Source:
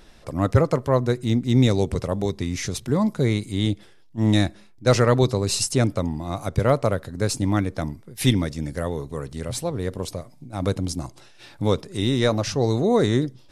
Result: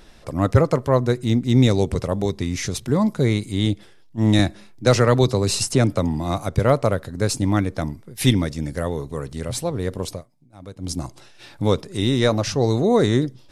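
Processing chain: 4.39–6.38 three-band squash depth 40%; 10.12–10.92 dip -17 dB, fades 0.14 s; gain +2 dB

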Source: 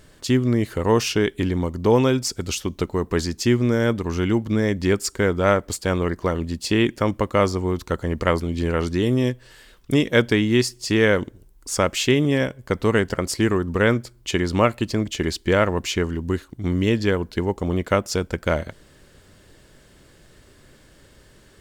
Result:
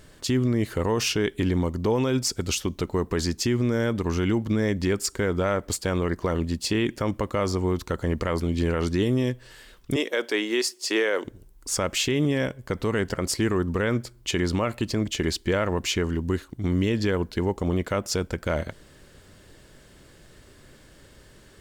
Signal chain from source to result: 9.96–11.25 HPF 350 Hz 24 dB/oct; limiter -14 dBFS, peak gain reduction 10 dB

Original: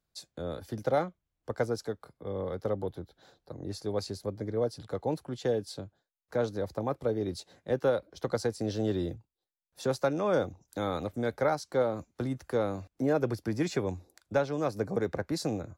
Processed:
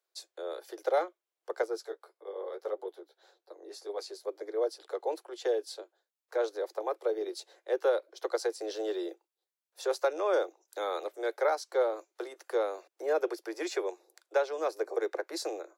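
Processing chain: steep high-pass 340 Hz 96 dB/oct; 1.62–4.27 flange 1.7 Hz, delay 8.3 ms, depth 6.9 ms, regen -22%

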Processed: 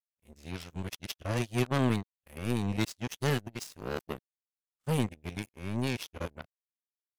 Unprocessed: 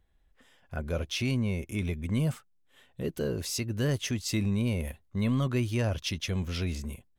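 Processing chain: whole clip reversed; power-law curve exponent 3; gain +6.5 dB

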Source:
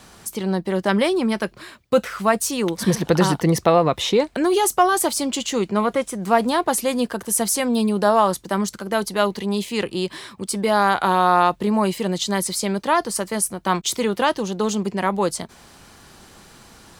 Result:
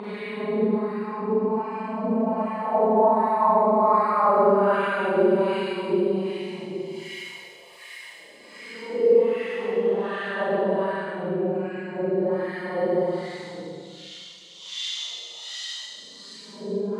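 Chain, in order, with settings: Paulstretch 27×, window 0.05 s, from 11.67; wah 1.3 Hz 440–1900 Hz, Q 2.9; Schroeder reverb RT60 1.5 s, combs from 32 ms, DRR -6.5 dB

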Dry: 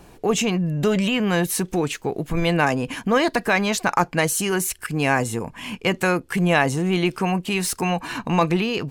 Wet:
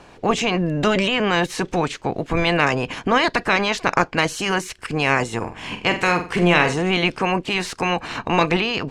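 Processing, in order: spectral limiter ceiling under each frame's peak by 14 dB; air absorption 99 m; 5.37–6.74 flutter echo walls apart 7.8 m, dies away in 0.34 s; gain +2 dB

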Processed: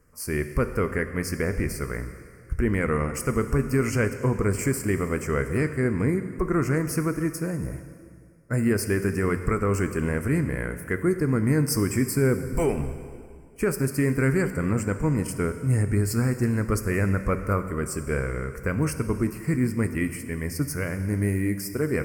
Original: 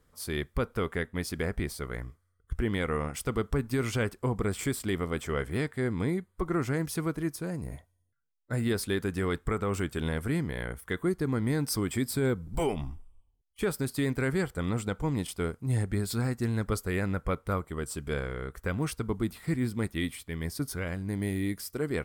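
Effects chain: Butterworth band-stop 3600 Hz, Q 1.5; bell 800 Hz -7.5 dB 0.4 oct; plate-style reverb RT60 2.2 s, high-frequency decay 0.9×, DRR 8.5 dB; gain +5.5 dB

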